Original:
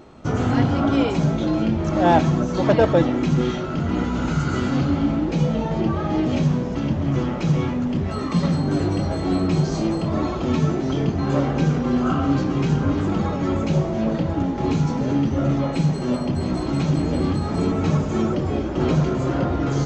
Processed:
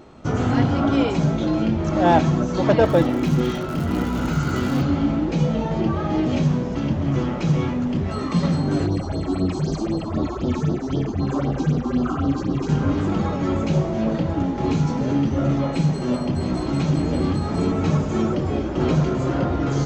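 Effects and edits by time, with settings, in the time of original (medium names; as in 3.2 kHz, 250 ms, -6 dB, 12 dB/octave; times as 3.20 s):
2.85–4.81 s: crackle 170 per s -28 dBFS
8.86–12.69 s: phase shifter stages 6, 3.9 Hz, lowest notch 130–2400 Hz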